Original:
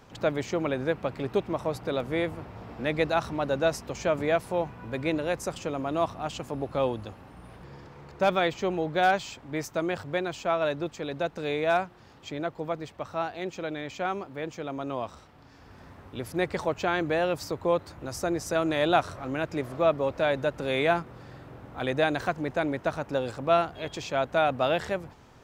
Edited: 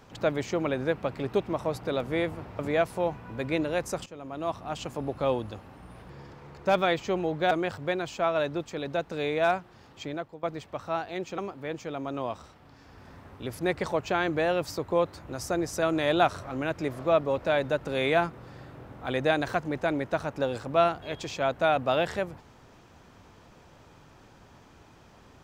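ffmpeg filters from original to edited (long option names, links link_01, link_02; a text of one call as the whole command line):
ffmpeg -i in.wav -filter_complex "[0:a]asplit=6[link_01][link_02][link_03][link_04][link_05][link_06];[link_01]atrim=end=2.592[link_07];[link_02]atrim=start=4.128:end=5.6,asetpts=PTS-STARTPTS,afade=type=out:start_time=1.468:duration=0.004:curve=hsin:silence=0.158489[link_08];[link_03]atrim=start=5.6:end=9.052,asetpts=PTS-STARTPTS,afade=type=in:duration=0.79:silence=0.158489[link_09];[link_04]atrim=start=9.768:end=12.69,asetpts=PTS-STARTPTS,afade=type=out:start_time=2.552:duration=0.37:silence=0.125893[link_10];[link_05]atrim=start=12.69:end=13.642,asetpts=PTS-STARTPTS,afade=type=in:duration=0.004:curve=hsin:silence=0.125893[link_11];[link_06]atrim=start=14.108[link_12];[link_08][link_09]concat=n=2:v=0:a=1[link_13];[link_07][link_13]acrossfade=duration=0.004:curve1=hsin:curve2=hsin[link_14];[link_10][link_11]concat=n=2:v=0:a=1[link_15];[link_14][link_15]acrossfade=duration=0.004:curve1=hsin:curve2=hsin[link_16];[link_16][link_12]acrossfade=duration=0.004:curve1=hsin:curve2=hsin" out.wav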